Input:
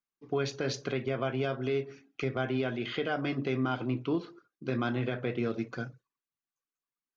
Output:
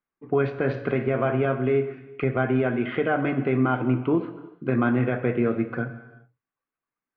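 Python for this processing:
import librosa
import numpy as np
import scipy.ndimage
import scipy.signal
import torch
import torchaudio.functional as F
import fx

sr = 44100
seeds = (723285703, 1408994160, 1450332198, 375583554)

y = scipy.signal.sosfilt(scipy.signal.butter(4, 2200.0, 'lowpass', fs=sr, output='sos'), x)
y = fx.room_flutter(y, sr, wall_m=9.8, rt60_s=0.28, at=(0.63, 1.46))
y = fx.rev_gated(y, sr, seeds[0], gate_ms=440, shape='falling', drr_db=9.5)
y = y * librosa.db_to_amplitude(8.0)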